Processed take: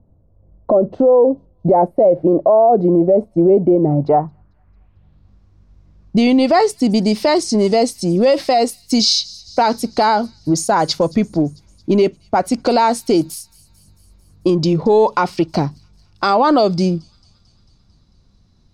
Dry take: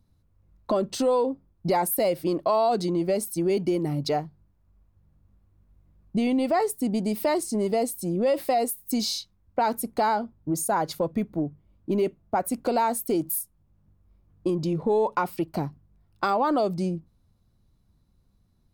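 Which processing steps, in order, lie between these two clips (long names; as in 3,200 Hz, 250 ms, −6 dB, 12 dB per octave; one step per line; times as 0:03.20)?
low-pass filter sweep 620 Hz → 5,400 Hz, 0:03.89–0:05.37
delay with a high-pass on its return 223 ms, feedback 65%, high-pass 5,000 Hz, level −20 dB
boost into a limiter +15.5 dB
level −4.5 dB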